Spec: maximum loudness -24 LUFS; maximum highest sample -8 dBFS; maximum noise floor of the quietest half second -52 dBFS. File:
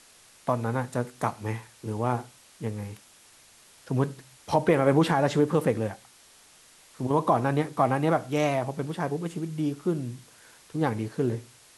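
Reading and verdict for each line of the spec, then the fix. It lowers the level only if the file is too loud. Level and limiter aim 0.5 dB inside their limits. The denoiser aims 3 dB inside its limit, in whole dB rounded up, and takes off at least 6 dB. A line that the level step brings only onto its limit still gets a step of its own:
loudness -27.5 LUFS: OK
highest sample -8.5 dBFS: OK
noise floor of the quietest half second -56 dBFS: OK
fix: none

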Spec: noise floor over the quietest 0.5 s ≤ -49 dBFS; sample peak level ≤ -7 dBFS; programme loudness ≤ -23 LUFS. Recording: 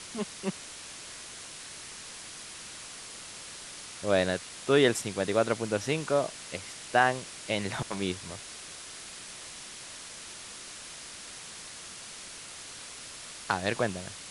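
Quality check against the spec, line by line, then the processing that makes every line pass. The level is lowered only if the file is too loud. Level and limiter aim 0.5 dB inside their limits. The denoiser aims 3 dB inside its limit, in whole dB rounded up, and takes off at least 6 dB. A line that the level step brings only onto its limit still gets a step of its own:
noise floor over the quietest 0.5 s -44 dBFS: fail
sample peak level -8.0 dBFS: OK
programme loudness -33.0 LUFS: OK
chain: denoiser 8 dB, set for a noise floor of -44 dBFS

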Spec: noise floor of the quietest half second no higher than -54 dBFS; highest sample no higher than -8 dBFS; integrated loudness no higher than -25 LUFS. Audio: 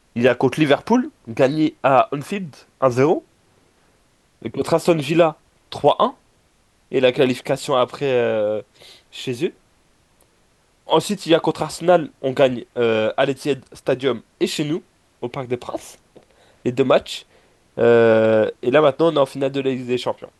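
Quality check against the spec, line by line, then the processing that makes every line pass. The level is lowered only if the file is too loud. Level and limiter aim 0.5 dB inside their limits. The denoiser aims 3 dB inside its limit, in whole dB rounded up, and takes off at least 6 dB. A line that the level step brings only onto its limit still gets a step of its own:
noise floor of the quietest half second -59 dBFS: OK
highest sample -2.5 dBFS: fail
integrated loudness -19.0 LUFS: fail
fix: gain -6.5 dB

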